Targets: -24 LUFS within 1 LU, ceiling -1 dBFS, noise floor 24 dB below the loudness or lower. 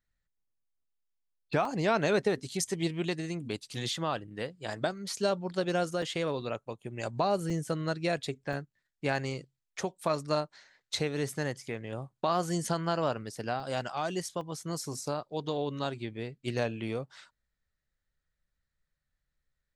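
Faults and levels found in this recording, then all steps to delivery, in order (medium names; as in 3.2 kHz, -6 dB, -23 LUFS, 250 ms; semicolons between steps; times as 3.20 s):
dropouts 6; longest dropout 2.2 ms; loudness -33.0 LUFS; peak level -14.5 dBFS; loudness target -24.0 LUFS
-> interpolate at 1.65/6.02/7.50/8.53/13.60/14.41 s, 2.2 ms; trim +9 dB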